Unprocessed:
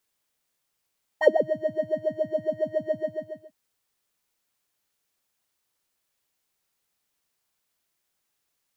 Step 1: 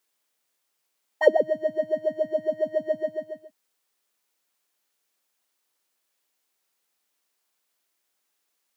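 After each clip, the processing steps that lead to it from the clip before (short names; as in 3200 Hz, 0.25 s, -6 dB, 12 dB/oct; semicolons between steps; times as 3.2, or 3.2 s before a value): HPF 250 Hz 12 dB/oct; gain +1.5 dB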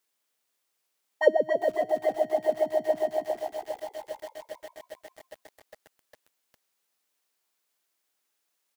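frequency-shifting echo 0.275 s, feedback 56%, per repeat +61 Hz, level -8.5 dB; lo-fi delay 0.405 s, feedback 80%, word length 6-bit, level -12.5 dB; gain -2.5 dB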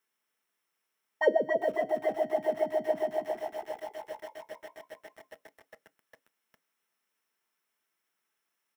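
reverb RT60 0.15 s, pre-delay 3 ms, DRR 11.5 dB; gain -6 dB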